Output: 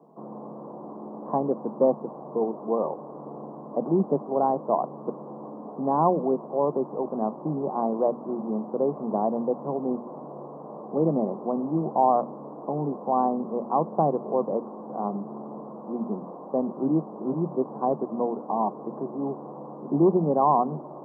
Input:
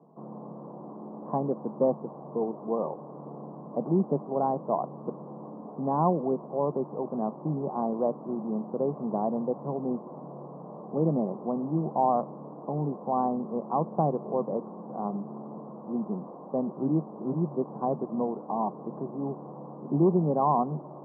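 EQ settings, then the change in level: high-pass 190 Hz 12 dB/octave; hum notches 60/120/180/240 Hz; +4.0 dB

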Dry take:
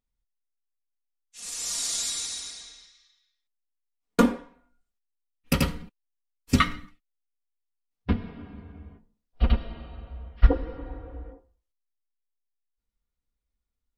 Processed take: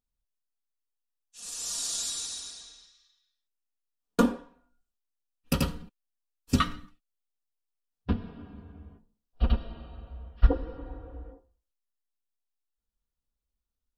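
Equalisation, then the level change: peaking EQ 2.1 kHz -13 dB 0.25 oct; -3.0 dB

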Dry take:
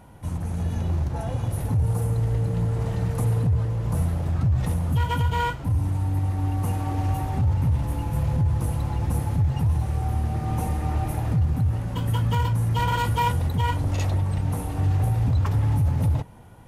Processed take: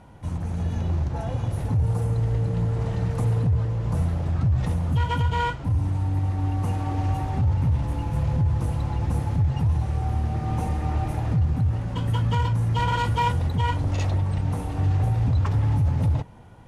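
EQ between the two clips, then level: low-pass 7.1 kHz 12 dB/octave; 0.0 dB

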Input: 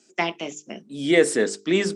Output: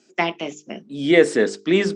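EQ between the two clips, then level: distance through air 92 m; +3.5 dB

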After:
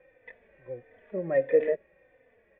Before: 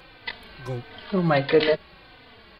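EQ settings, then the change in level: dynamic bell 310 Hz, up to +6 dB, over -32 dBFS, Q 0.88; cascade formant filter e; treble shelf 3.5 kHz -8 dB; 0.0 dB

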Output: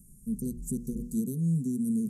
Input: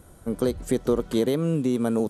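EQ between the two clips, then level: inverse Chebyshev band-stop 810–2400 Hz, stop band 70 dB; hum notches 60/120/180/240/300/360/420/480 Hz; static phaser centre 460 Hz, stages 8; +1.0 dB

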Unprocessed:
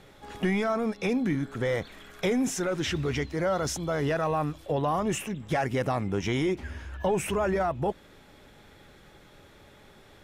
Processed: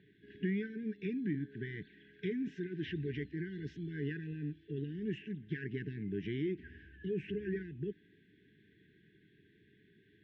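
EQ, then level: brick-wall FIR band-stop 440–1500 Hz; cabinet simulation 170–3000 Hz, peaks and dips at 250 Hz -7 dB, 380 Hz -6 dB, 1.3 kHz -9 dB, 2.3 kHz -7 dB; treble shelf 2.3 kHz -10.5 dB; -3.0 dB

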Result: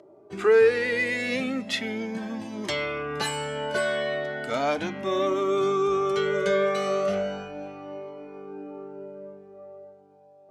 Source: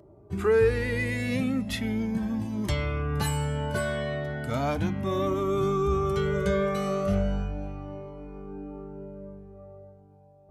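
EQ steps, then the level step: band-pass 400–6600 Hz; peaking EQ 990 Hz -4.5 dB 0.94 oct; +6.5 dB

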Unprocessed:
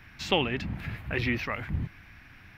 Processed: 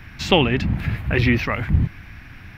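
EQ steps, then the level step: bass shelf 280 Hz +6 dB; +8.0 dB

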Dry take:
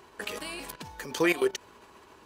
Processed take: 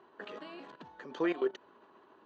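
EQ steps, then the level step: distance through air 93 m; cabinet simulation 250–5800 Hz, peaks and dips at 470 Hz -4 dB, 900 Hz -3 dB, 2.3 kHz -8 dB, 5.2 kHz -10 dB; treble shelf 2.2 kHz -10 dB; -2.5 dB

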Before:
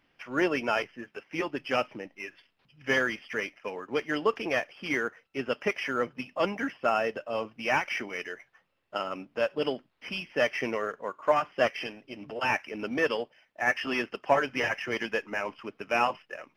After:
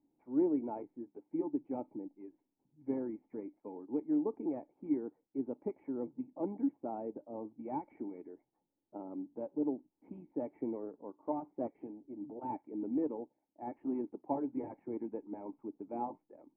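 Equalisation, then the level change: cascade formant filter u; bass shelf 85 Hz -5.5 dB; treble shelf 2.8 kHz -10.5 dB; +4.0 dB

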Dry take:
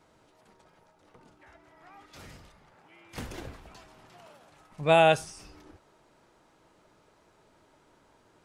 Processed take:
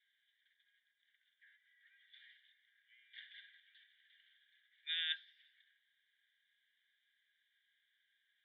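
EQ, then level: Chebyshev band-pass 1.6–3.6 kHz, order 5; differentiator; static phaser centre 2.6 kHz, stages 6; +7.5 dB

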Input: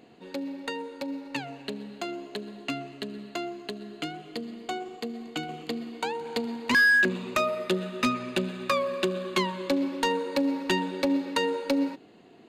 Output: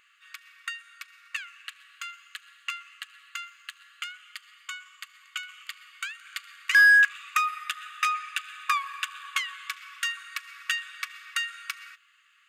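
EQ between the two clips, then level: brick-wall FIR high-pass 1.1 kHz; peaking EQ 4.2 kHz -13 dB 0.36 oct; +4.0 dB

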